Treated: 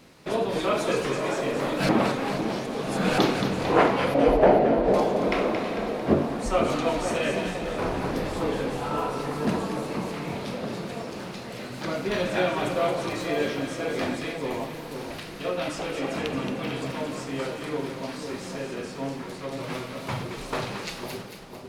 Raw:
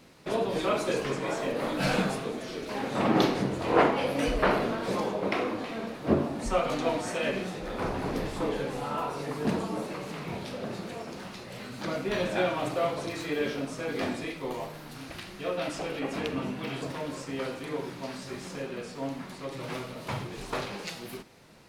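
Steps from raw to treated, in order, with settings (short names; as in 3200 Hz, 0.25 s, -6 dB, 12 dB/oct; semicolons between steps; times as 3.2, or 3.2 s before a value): 1.89–3.18 reverse; 4.14–4.94 EQ curve 120 Hz 0 dB, 770 Hz +9 dB, 1100 Hz -10 dB, 1700 Hz -5 dB, 13000 Hz -20 dB; split-band echo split 990 Hz, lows 0.501 s, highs 0.224 s, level -7 dB; gain +2.5 dB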